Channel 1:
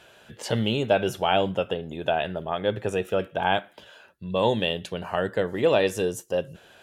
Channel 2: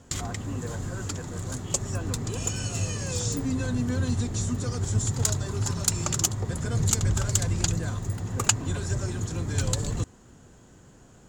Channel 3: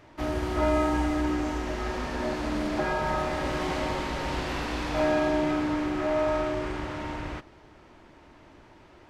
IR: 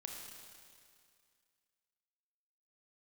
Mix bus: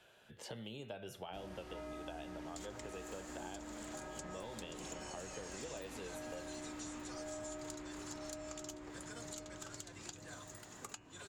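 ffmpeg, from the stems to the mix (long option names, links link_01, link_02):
-filter_complex "[0:a]volume=-12dB[link_01];[1:a]highpass=frequency=1500:poles=1,flanger=delay=4.6:depth=3.8:regen=-66:speed=0.72:shape=triangular,adelay=2450,volume=-2dB[link_02];[2:a]adelay=1150,volume=-16dB,asplit=2[link_03][link_04];[link_04]volume=-5dB[link_05];[link_01][link_02]amix=inputs=2:normalize=0,acompressor=threshold=-38dB:ratio=2.5,volume=0dB[link_06];[link_05]aecho=0:1:1015|2030|3045|4060|5075:1|0.39|0.152|0.0593|0.0231[link_07];[link_03][link_06][link_07]amix=inputs=3:normalize=0,bandreject=frequency=83.84:width_type=h:width=4,bandreject=frequency=167.68:width_type=h:width=4,bandreject=frequency=251.52:width_type=h:width=4,bandreject=frequency=335.36:width_type=h:width=4,bandreject=frequency=419.2:width_type=h:width=4,bandreject=frequency=503.04:width_type=h:width=4,bandreject=frequency=586.88:width_type=h:width=4,bandreject=frequency=670.72:width_type=h:width=4,bandreject=frequency=754.56:width_type=h:width=4,bandreject=frequency=838.4:width_type=h:width=4,bandreject=frequency=922.24:width_type=h:width=4,bandreject=frequency=1006.08:width_type=h:width=4,bandreject=frequency=1089.92:width_type=h:width=4,bandreject=frequency=1173.76:width_type=h:width=4,bandreject=frequency=1257.6:width_type=h:width=4,bandreject=frequency=1341.44:width_type=h:width=4,bandreject=frequency=1425.28:width_type=h:width=4,bandreject=frequency=1509.12:width_type=h:width=4,bandreject=frequency=1592.96:width_type=h:width=4,bandreject=frequency=1676.8:width_type=h:width=4,bandreject=frequency=1760.64:width_type=h:width=4,bandreject=frequency=1844.48:width_type=h:width=4,bandreject=frequency=1928.32:width_type=h:width=4,bandreject=frequency=2012.16:width_type=h:width=4,bandreject=frequency=2096:width_type=h:width=4,bandreject=frequency=2179.84:width_type=h:width=4,bandreject=frequency=2263.68:width_type=h:width=4,bandreject=frequency=2347.52:width_type=h:width=4,bandreject=frequency=2431.36:width_type=h:width=4,bandreject=frequency=2515.2:width_type=h:width=4,bandreject=frequency=2599.04:width_type=h:width=4,bandreject=frequency=2682.88:width_type=h:width=4,bandreject=frequency=2766.72:width_type=h:width=4,bandreject=frequency=2850.56:width_type=h:width=4,bandreject=frequency=2934.4:width_type=h:width=4,acrossover=split=140|720|4900[link_08][link_09][link_10][link_11];[link_08]acompressor=threshold=-58dB:ratio=4[link_12];[link_09]acompressor=threshold=-48dB:ratio=4[link_13];[link_10]acompressor=threshold=-52dB:ratio=4[link_14];[link_11]acompressor=threshold=-54dB:ratio=4[link_15];[link_12][link_13][link_14][link_15]amix=inputs=4:normalize=0"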